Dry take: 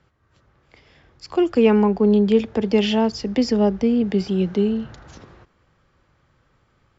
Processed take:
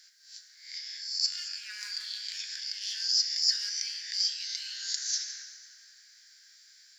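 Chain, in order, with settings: spectral swells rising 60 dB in 0.50 s; in parallel at -8.5 dB: hard clip -17 dBFS, distortion -9 dB; on the sum: Chebyshev high-pass 1600 Hz, order 6; reverse; compressor 16:1, threshold -43 dBFS, peak gain reduction 24 dB; reverse; resonant high shelf 3700 Hz +10 dB, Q 3; plate-style reverb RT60 2.7 s, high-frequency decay 0.6×, DRR 4.5 dB; gain +4 dB

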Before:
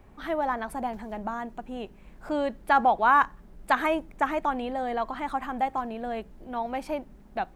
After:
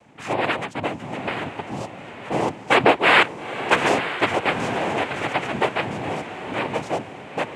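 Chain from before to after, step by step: noise vocoder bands 4; diffused feedback echo 0.904 s, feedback 44%, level -10 dB; gain +5 dB

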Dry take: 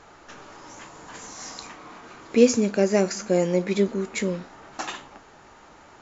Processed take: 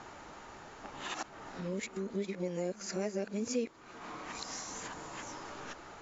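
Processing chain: whole clip reversed; compressor 2.5:1, threshold -40 dBFS, peak gain reduction 19.5 dB

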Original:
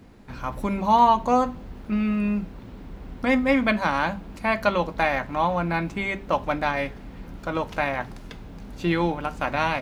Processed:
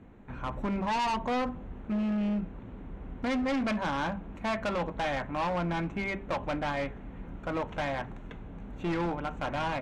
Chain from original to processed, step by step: running mean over 9 samples; overloaded stage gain 24 dB; treble ducked by the level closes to 1100 Hz, closed at -13.5 dBFS; gain -3 dB

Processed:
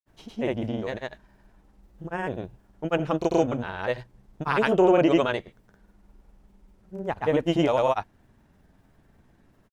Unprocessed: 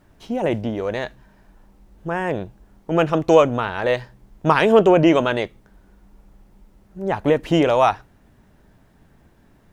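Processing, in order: grains, pitch spread up and down by 0 st; gain -4.5 dB

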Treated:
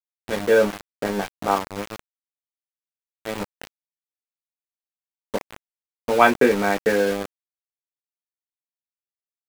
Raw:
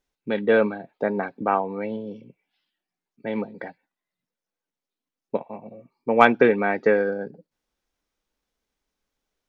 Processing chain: early reflections 20 ms -4.5 dB, 36 ms -16 dB; sample gate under -23.5 dBFS; gain -1 dB

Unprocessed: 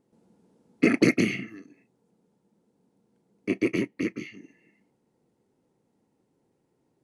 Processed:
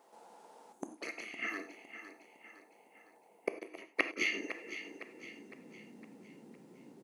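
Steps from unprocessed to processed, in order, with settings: 0.72–0.98 spectral delete 370–6100 Hz; 1.57–3.78 band shelf 2800 Hz -11 dB 3 oct; flipped gate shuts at -20 dBFS, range -28 dB; high-pass sweep 790 Hz -> 210 Hz, 3.99–5.61; feedback echo 0.509 s, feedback 46%, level -11.5 dB; non-linear reverb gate 0.12 s flat, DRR 9 dB; gain +11.5 dB

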